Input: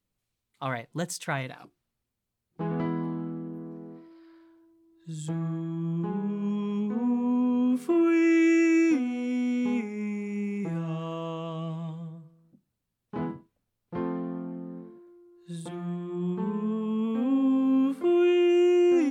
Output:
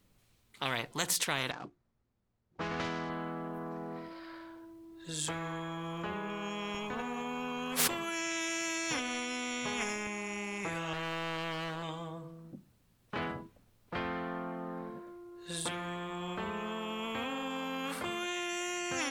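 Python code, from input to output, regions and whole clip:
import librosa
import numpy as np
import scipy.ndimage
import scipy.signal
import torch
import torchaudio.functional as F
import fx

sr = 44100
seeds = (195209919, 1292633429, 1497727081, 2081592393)

y = fx.chain(x, sr, fx.median_filter(points=15),
    fx.lowpass(hz=8400.0, slope=24),
    fx.upward_expand(threshold_db=-45.0, expansion=1.5), at=(1.51, 3.1))
y = fx.chain(y, sr, fx.comb(ms=7.3, depth=0.42),
    fx.sustainer(db_per_s=27.0), at=(6.74, 10.07))
y = fx.chain(y, sr, fx.peak_eq(hz=5400.0, db=-12.0, octaves=0.87),
    fx.clip_hard(threshold_db=-31.0), at=(10.93, 11.83))
y = fx.high_shelf(y, sr, hz=4600.0, db=-4.0)
y = fx.spectral_comp(y, sr, ratio=4.0)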